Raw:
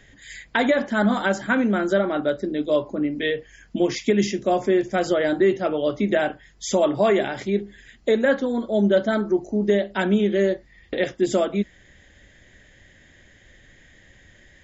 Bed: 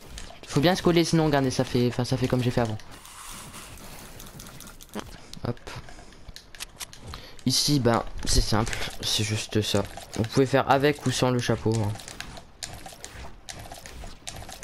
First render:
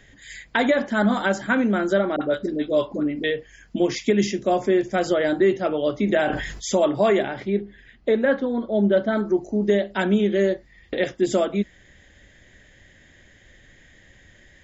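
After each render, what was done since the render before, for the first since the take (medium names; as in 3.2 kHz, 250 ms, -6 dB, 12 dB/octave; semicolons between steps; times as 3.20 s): 2.16–3.24 s: phase dispersion highs, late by 53 ms, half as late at 680 Hz; 6.05–6.71 s: decay stretcher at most 51 dB/s; 7.22–9.17 s: distance through air 200 m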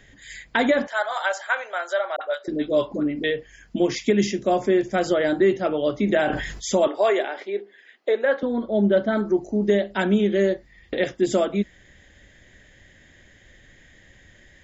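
0.87–2.48 s: steep high-pass 580 Hz; 6.87–8.43 s: high-pass 380 Hz 24 dB/octave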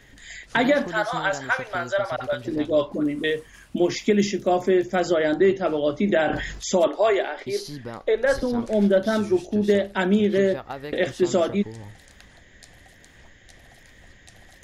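add bed -14 dB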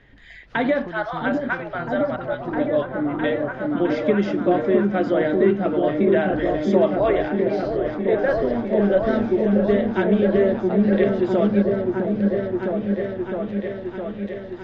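distance through air 310 m; delay with an opening low-pass 660 ms, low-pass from 400 Hz, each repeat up 1 oct, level 0 dB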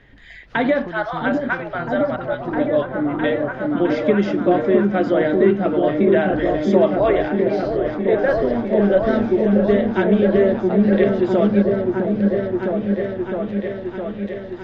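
trim +2.5 dB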